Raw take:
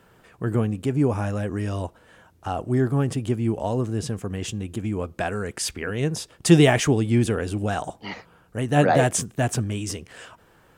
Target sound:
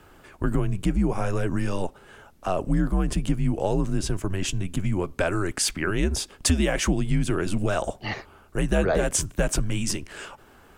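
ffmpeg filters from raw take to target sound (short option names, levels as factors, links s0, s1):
-af "acompressor=threshold=0.0794:ratio=10,afreqshift=-90,volume=1.58"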